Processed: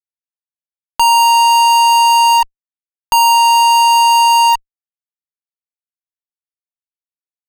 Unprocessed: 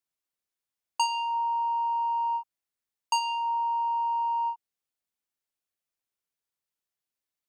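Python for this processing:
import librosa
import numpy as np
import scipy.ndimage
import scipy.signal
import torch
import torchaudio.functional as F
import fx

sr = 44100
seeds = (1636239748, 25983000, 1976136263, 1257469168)

y = fx.fuzz(x, sr, gain_db=52.0, gate_db=-49.0)
y = F.gain(torch.from_numpy(y), 4.5).numpy()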